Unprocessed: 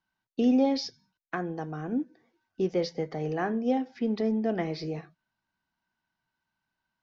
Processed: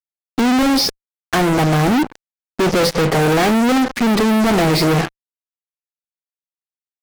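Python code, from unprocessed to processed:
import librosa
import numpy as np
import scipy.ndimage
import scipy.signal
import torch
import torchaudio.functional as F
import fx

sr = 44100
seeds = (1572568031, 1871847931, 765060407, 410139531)

p1 = fx.high_shelf(x, sr, hz=2900.0, db=-9.0)
p2 = fx.rider(p1, sr, range_db=4, speed_s=0.5)
p3 = p1 + F.gain(torch.from_numpy(p2), -3.0).numpy()
y = fx.fuzz(p3, sr, gain_db=48.0, gate_db=-46.0)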